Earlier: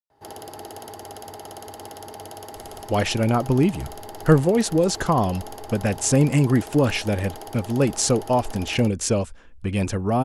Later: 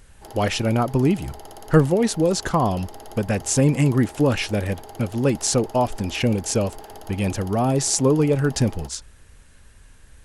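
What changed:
speech: entry -2.55 s; background -3.0 dB

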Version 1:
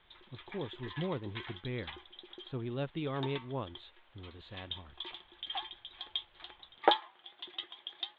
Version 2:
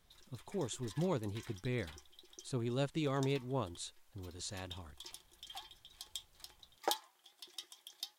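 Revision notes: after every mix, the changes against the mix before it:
background -11.5 dB; master: remove elliptic low-pass 3500 Hz, stop band 40 dB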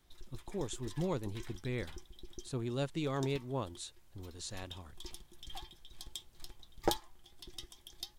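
background: remove HPF 620 Hz 12 dB/oct

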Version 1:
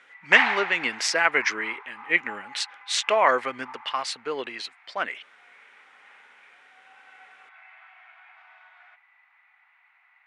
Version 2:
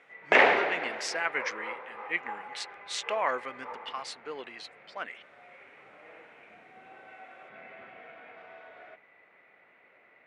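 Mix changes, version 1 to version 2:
speech -9.5 dB; background: remove steep high-pass 780 Hz 72 dB/oct

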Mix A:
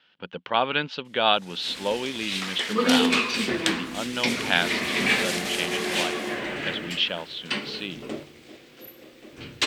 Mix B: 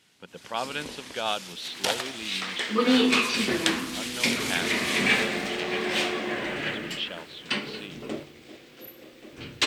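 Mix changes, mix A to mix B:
speech -8.0 dB; first sound: entry -1.05 s

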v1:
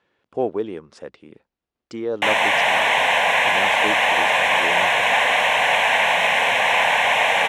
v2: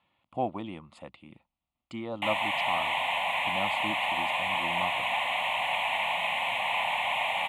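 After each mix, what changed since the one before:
background -9.5 dB; master: add fixed phaser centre 1600 Hz, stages 6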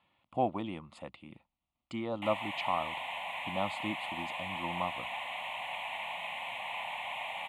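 background -10.0 dB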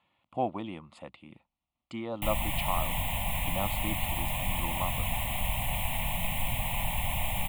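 background: remove BPF 720–3000 Hz

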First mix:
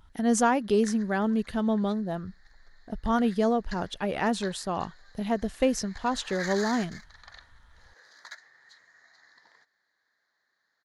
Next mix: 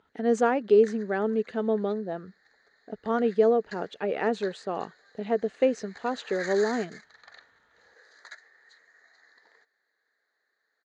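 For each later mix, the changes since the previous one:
speech: add air absorption 110 m; master: add speaker cabinet 260–8000 Hz, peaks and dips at 440 Hz +9 dB, 1000 Hz -6 dB, 3300 Hz -5 dB, 5400 Hz -10 dB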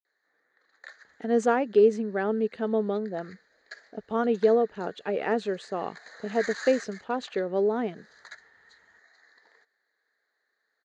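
speech: entry +1.05 s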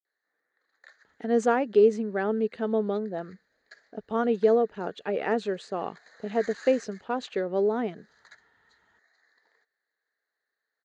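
background -7.5 dB

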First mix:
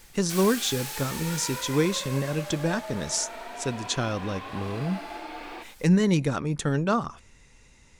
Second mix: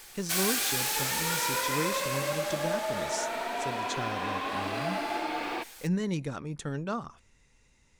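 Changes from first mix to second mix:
speech -9.0 dB; background +6.0 dB

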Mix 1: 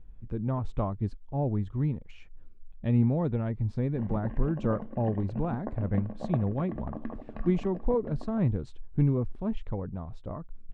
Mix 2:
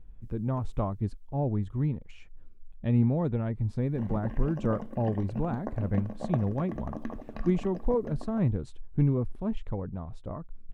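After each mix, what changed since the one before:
background: remove air absorption 320 m; master: remove LPF 6000 Hz 12 dB/oct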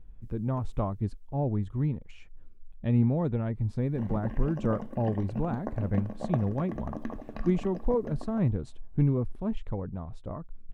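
reverb: on, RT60 2.2 s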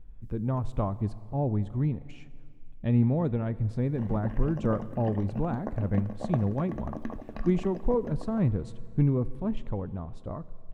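speech: send on

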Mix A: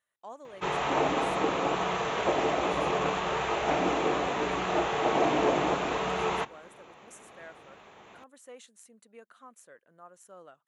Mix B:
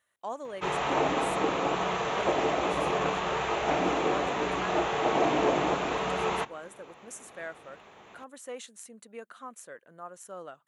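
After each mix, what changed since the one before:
speech +8.0 dB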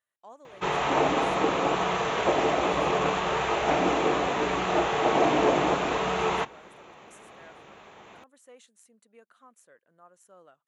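speech -12.0 dB; background +3.0 dB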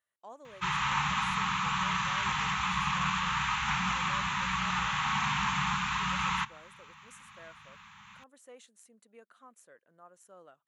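background: add inverse Chebyshev band-stop 290–670 Hz, stop band 40 dB

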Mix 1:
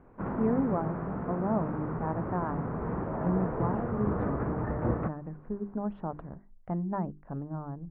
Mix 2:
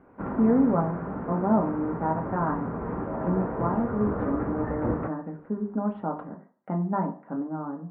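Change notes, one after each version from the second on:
speech: add HPF 150 Hz 24 dB/oct; reverb: on, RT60 0.45 s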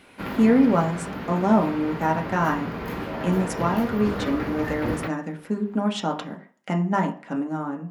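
speech +4.0 dB; master: remove LPF 1300 Hz 24 dB/oct

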